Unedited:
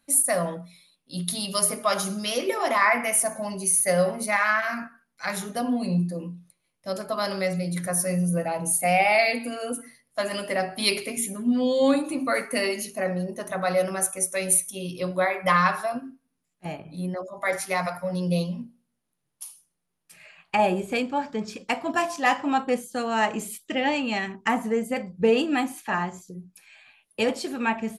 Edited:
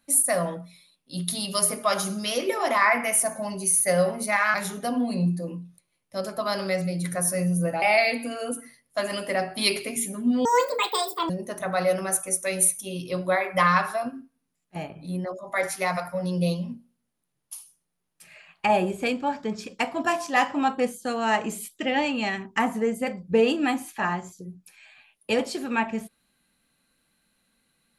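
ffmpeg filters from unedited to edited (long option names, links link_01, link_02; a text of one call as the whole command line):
ffmpeg -i in.wav -filter_complex "[0:a]asplit=5[link_01][link_02][link_03][link_04][link_05];[link_01]atrim=end=4.542[link_06];[link_02]atrim=start=5.258:end=8.542[link_07];[link_03]atrim=start=9.028:end=11.664[link_08];[link_04]atrim=start=11.66:end=13.19,asetpts=PTS-STARTPTS,asetrate=79821,aresample=44100[link_09];[link_05]atrim=start=13.186[link_10];[link_06][link_07]acrossfade=duration=0.004:curve1=hsin:curve2=hsin[link_11];[link_11][link_08]acrossfade=duration=0.004:curve1=hsin:curve2=hsin[link_12];[link_12][link_09]acrossfade=duration=0.004:curve1=hsin:curve2=hsin[link_13];[link_13][link_10]acrossfade=duration=0.004:curve1=hsin:curve2=hsin" out.wav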